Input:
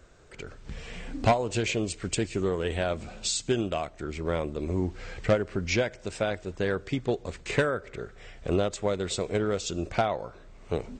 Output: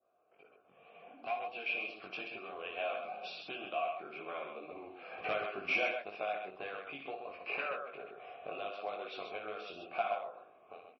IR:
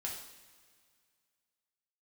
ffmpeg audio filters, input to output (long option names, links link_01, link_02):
-filter_complex "[0:a]highpass=280,aemphasis=mode=reproduction:type=riaa,asplit=3[link_01][link_02][link_03];[link_01]afade=type=out:start_time=7.03:duration=0.02[link_04];[link_02]bandreject=frequency=3500:width=6.3,afade=type=in:start_time=7.03:duration=0.02,afade=type=out:start_time=7.73:duration=0.02[link_05];[link_03]afade=type=in:start_time=7.73:duration=0.02[link_06];[link_04][link_05][link_06]amix=inputs=3:normalize=0,adynamicequalizer=threshold=0.00447:dfrequency=2100:dqfactor=0.98:tfrequency=2100:tqfactor=0.98:attack=5:release=100:ratio=0.375:range=2.5:mode=boostabove:tftype=bell,acrossover=split=1600[link_07][link_08];[link_07]acompressor=threshold=-37dB:ratio=10[link_09];[link_09][link_08]amix=inputs=2:normalize=0,asettb=1/sr,asplit=3[link_10][link_11][link_12];[link_10]atrim=end=5.194[link_13];[link_11]atrim=start=5.19:end=5.99,asetpts=PTS-STARTPTS,afade=type=in:duration=0.004:curve=qsin,afade=type=out:start_time=0.796:duration=0.004:curve=qsin,aeval=exprs='0.126*(cos(1*acos(clip(val(0)/0.126,-1,1)))-cos(1*PI/2))+0.00126*(cos(4*acos(clip(val(0)/0.126,-1,1)))-cos(4*PI/2))+0.0282*(cos(5*acos(clip(val(0)/0.126,-1,1)))-cos(5*PI/2))+0.000708*(cos(6*acos(clip(val(0)/0.126,-1,1)))-cos(6*PI/2))+0.00178*(cos(7*acos(clip(val(0)/0.126,-1,1)))-cos(7*PI/2))':channel_layout=same[link_14];[link_12]atrim=start=5.986[link_15];[link_13][link_14]acrossfade=duration=0.004:curve1=hsin:curve2=qsin[link_16];[link_16][link_15]acrossfade=duration=0.004:curve1=qsin:curve2=hsin,asplit=3[link_17][link_18][link_19];[link_17]bandpass=frequency=730:width_type=q:width=8,volume=0dB[link_20];[link_18]bandpass=frequency=1090:width_type=q:width=8,volume=-6dB[link_21];[link_19]bandpass=frequency=2440:width_type=q:width=8,volume=-9dB[link_22];[link_20][link_21][link_22]amix=inputs=3:normalize=0,dynaudnorm=framelen=920:gausssize=3:maxgain=16.5dB,flanger=delay=18.5:depth=3.4:speed=2.1,asplit=2[link_23][link_24];[link_24]aecho=0:1:58.31|131.2:0.447|0.501[link_25];[link_23][link_25]amix=inputs=2:normalize=0,volume=-4dB" -ar 22050 -c:a libmp3lame -b:a 24k